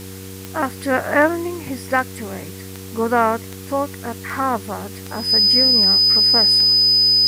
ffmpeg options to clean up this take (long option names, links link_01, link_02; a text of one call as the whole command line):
ffmpeg -i in.wav -af "adeclick=threshold=4,bandreject=frequency=95:width_type=h:width=4,bandreject=frequency=190:width_type=h:width=4,bandreject=frequency=285:width_type=h:width=4,bandreject=frequency=380:width_type=h:width=4,bandreject=frequency=475:width_type=h:width=4,bandreject=frequency=5000:width=30,afftdn=noise_reduction=30:noise_floor=-34" out.wav